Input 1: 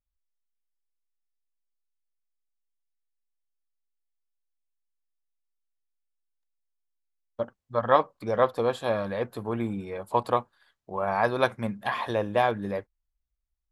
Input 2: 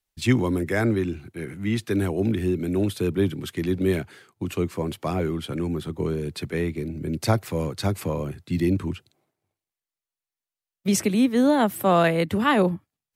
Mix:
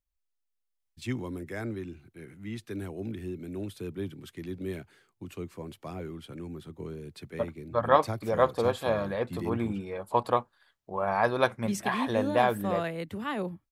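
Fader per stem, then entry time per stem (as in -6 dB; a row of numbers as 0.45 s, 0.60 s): -1.0 dB, -13.0 dB; 0.00 s, 0.80 s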